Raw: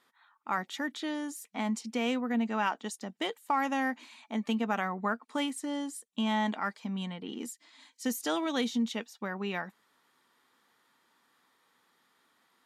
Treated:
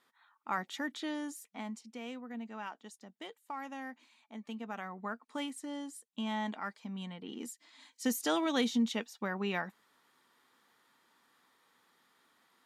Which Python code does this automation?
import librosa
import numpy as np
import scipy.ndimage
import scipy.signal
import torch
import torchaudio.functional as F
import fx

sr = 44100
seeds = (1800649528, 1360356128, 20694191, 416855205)

y = fx.gain(x, sr, db=fx.line((1.28, -3.0), (1.85, -13.0), (4.43, -13.0), (5.36, -6.5), (6.93, -6.5), (8.06, 0.0)))